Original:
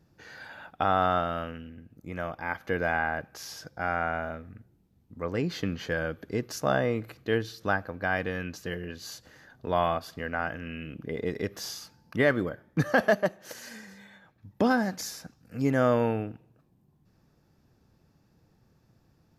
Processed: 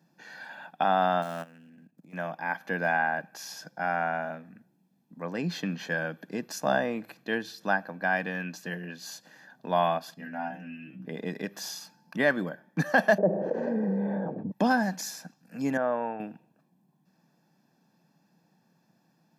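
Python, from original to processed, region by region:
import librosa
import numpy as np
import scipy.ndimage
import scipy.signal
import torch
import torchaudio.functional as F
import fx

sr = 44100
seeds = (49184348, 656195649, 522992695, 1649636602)

y = fx.chain(x, sr, fx.dead_time(dead_ms=0.06),
    fx.level_steps(step_db=17), at=(1.22, 2.13))
y = fx.chain(y, sr, fx.bass_treble(bass_db=11, treble_db=4),
    fx.stiff_resonator(f0_hz=62.0, decay_s=0.4, stiffness=0.002), at=(10.14, 11.06))
y = fx.chain(y, sr, fx.lowpass_res(hz=460.0, q=4.4),
    fx.env_flatten(amount_pct=70), at=(13.18, 14.52))
y = fx.chain(y, sr, fx.lowpass(hz=1400.0, slope=12),
    fx.peak_eq(hz=190.0, db=-10.0, octaves=2.1), at=(15.77, 16.2))
y = scipy.signal.sosfilt(scipy.signal.cheby1(4, 1.0, 170.0, 'highpass', fs=sr, output='sos'), y)
y = y + 0.53 * np.pad(y, (int(1.2 * sr / 1000.0), 0))[:len(y)]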